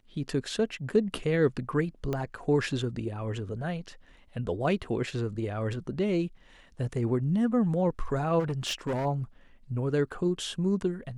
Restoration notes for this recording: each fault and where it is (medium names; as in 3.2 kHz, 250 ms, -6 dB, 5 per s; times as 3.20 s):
2.13 s: pop -18 dBFS
8.39–9.06 s: clipped -26.5 dBFS